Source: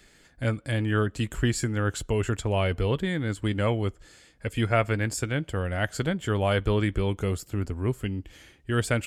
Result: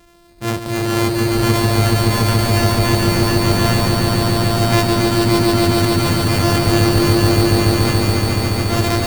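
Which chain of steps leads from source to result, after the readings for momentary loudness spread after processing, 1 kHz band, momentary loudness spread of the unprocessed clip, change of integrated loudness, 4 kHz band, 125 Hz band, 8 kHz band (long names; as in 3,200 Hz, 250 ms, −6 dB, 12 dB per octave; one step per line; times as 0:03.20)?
4 LU, +14.5 dB, 7 LU, +12.5 dB, +17.5 dB, +11.5 dB, +14.0 dB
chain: samples sorted by size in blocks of 128 samples
transient designer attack −4 dB, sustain +7 dB
echo that builds up and dies away 142 ms, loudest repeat 5, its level −3 dB
level +6 dB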